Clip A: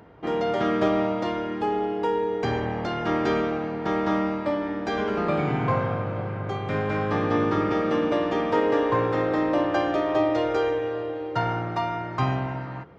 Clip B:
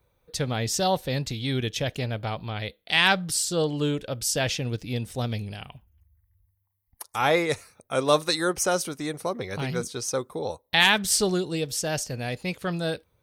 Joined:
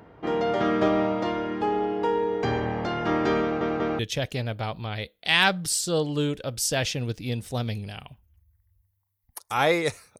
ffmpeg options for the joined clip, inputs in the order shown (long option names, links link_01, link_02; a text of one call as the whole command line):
ffmpeg -i cue0.wav -i cue1.wav -filter_complex "[0:a]apad=whole_dur=10.19,atrim=end=10.19,asplit=3[link_01][link_02][link_03];[link_01]atrim=end=3.612[link_04];[link_02]atrim=start=3.418:end=3.612[link_05];[link_03]atrim=start=3.418:end=3.612[link_06];[1:a]atrim=start=1.628:end=7.83[link_07];[link_04][link_05]acrossfade=duration=0.004:curve1=hsin:curve2=hsin[link_08];[link_08][link_06]acrossfade=duration=0.004:curve1=hsin:curve2=hsin[link_09];[link_09][link_07]acrossfade=duration=0.004:curve1=hsin:curve2=hsin" out.wav